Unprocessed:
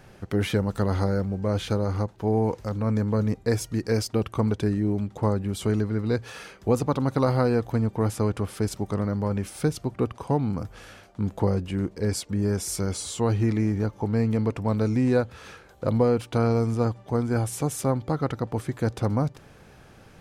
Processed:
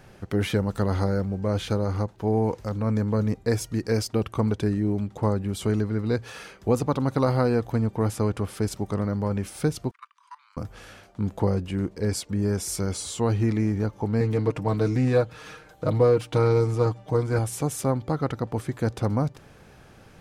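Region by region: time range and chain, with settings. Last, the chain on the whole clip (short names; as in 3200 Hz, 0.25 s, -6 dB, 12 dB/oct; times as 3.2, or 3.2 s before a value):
9.91–10.57 steep high-pass 990 Hz 96 dB/oct + air absorption 56 m + level quantiser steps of 20 dB
14.2–17.39 comb 6.5 ms, depth 70% + Doppler distortion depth 0.13 ms
whole clip: dry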